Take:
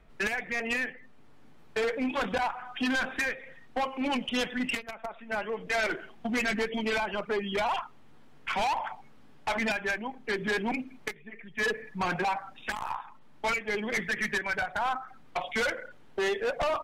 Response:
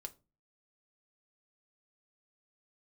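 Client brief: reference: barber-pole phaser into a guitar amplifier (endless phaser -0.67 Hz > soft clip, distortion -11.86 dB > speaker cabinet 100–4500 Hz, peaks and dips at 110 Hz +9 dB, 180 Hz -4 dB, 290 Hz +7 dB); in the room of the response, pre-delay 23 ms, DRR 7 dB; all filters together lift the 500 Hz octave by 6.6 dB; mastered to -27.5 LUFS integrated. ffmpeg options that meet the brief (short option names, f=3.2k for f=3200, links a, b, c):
-filter_complex "[0:a]equalizer=f=500:t=o:g=7.5,asplit=2[a][b];[1:a]atrim=start_sample=2205,adelay=23[c];[b][c]afir=irnorm=-1:irlink=0,volume=-2.5dB[d];[a][d]amix=inputs=2:normalize=0,asplit=2[e][f];[f]afreqshift=-0.67[g];[e][g]amix=inputs=2:normalize=1,asoftclip=threshold=-24.5dB,highpass=100,equalizer=f=110:t=q:w=4:g=9,equalizer=f=180:t=q:w=4:g=-4,equalizer=f=290:t=q:w=4:g=7,lowpass=f=4.5k:w=0.5412,lowpass=f=4.5k:w=1.3066,volume=5dB"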